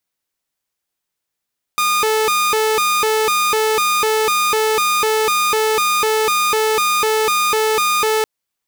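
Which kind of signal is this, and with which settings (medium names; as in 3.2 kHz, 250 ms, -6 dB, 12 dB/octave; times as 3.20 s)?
siren hi-lo 436–1220 Hz 2 per s saw -11.5 dBFS 6.46 s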